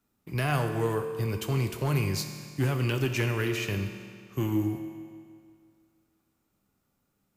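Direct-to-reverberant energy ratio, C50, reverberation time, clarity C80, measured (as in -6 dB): 5.5 dB, 7.5 dB, 2.1 s, 8.0 dB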